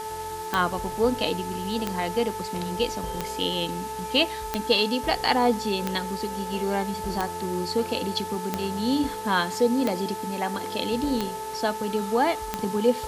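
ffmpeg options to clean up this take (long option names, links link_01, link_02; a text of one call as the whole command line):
ffmpeg -i in.wav -af "adeclick=threshold=4,bandreject=frequency=432.6:width_type=h:width=4,bandreject=frequency=865.2:width_type=h:width=4,bandreject=frequency=1297.8:width_type=h:width=4,bandreject=frequency=1730.4:width_type=h:width=4,bandreject=frequency=880:width=30,afwtdn=0.0079" out.wav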